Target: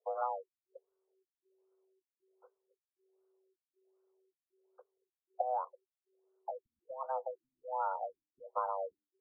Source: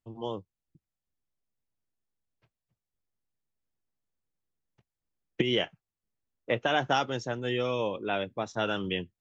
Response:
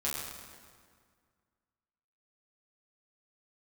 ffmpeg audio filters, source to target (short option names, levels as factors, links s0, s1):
-af "afreqshift=380,acompressor=threshold=0.01:ratio=4,afftfilt=real='re*lt(b*sr/1024,270*pow(1600/270,0.5+0.5*sin(2*PI*1.3*pts/sr)))':imag='im*lt(b*sr/1024,270*pow(1600/270,0.5+0.5*sin(2*PI*1.3*pts/sr)))':win_size=1024:overlap=0.75,volume=2.37"